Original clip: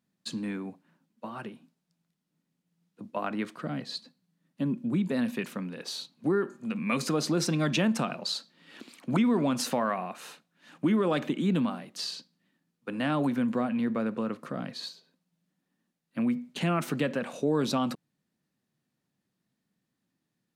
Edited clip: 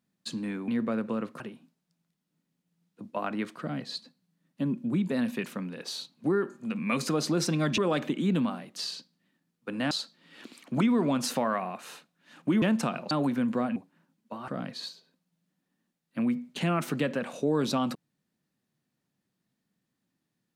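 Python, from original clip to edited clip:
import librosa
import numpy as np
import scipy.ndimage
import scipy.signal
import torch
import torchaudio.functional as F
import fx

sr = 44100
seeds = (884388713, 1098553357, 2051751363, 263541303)

y = fx.edit(x, sr, fx.swap(start_s=0.68, length_s=0.72, other_s=13.76, other_length_s=0.72),
    fx.swap(start_s=7.78, length_s=0.49, other_s=10.98, other_length_s=2.13), tone=tone)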